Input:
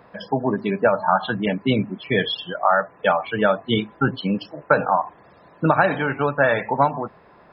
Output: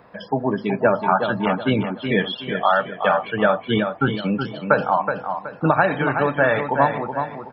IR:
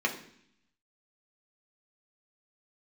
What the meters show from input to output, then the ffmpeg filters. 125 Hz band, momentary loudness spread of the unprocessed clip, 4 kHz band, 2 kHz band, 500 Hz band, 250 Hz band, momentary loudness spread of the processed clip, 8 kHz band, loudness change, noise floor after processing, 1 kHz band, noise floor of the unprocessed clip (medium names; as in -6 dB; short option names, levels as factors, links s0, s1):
+0.5 dB, 7 LU, -1.5 dB, +1.0 dB, +1.0 dB, +1.0 dB, 7 LU, no reading, +0.5 dB, -41 dBFS, +1.0 dB, -51 dBFS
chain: -filter_complex "[0:a]acrossover=split=3600[s0][s1];[s1]acompressor=threshold=0.00708:ratio=4:attack=1:release=60[s2];[s0][s2]amix=inputs=2:normalize=0,aecho=1:1:373|746|1119|1492:0.447|0.147|0.0486|0.0161"